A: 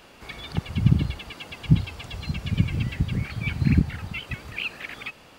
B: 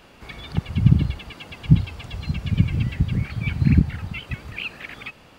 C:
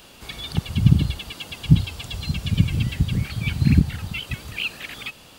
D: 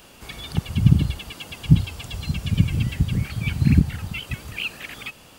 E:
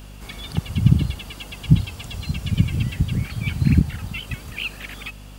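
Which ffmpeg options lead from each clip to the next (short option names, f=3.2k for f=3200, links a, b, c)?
-af "bass=f=250:g=4,treble=f=4k:g=-3"
-af "aexciter=amount=3.5:drive=3.2:freq=3k"
-af "equalizer=f=3.9k:w=2.1:g=-5"
-af "aeval=exprs='val(0)+0.0112*(sin(2*PI*50*n/s)+sin(2*PI*2*50*n/s)/2+sin(2*PI*3*50*n/s)/3+sin(2*PI*4*50*n/s)/4+sin(2*PI*5*50*n/s)/5)':c=same"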